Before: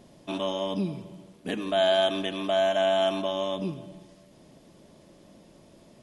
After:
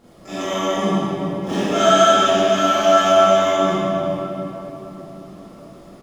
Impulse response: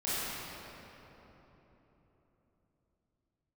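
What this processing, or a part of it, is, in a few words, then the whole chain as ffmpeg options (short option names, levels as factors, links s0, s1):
shimmer-style reverb: -filter_complex "[0:a]asplit=3[s0][s1][s2];[s0]afade=t=out:st=1.05:d=0.02[s3];[s1]asplit=2[s4][s5];[s5]adelay=48,volume=0.708[s6];[s4][s6]amix=inputs=2:normalize=0,afade=t=in:st=1.05:d=0.02,afade=t=out:st=1.83:d=0.02[s7];[s2]afade=t=in:st=1.83:d=0.02[s8];[s3][s7][s8]amix=inputs=3:normalize=0,aecho=1:1:134|268:0.0794|0.0175,asplit=2[s9][s10];[s10]asetrate=88200,aresample=44100,atempo=0.5,volume=0.631[s11];[s9][s11]amix=inputs=2:normalize=0[s12];[1:a]atrim=start_sample=2205[s13];[s12][s13]afir=irnorm=-1:irlink=0"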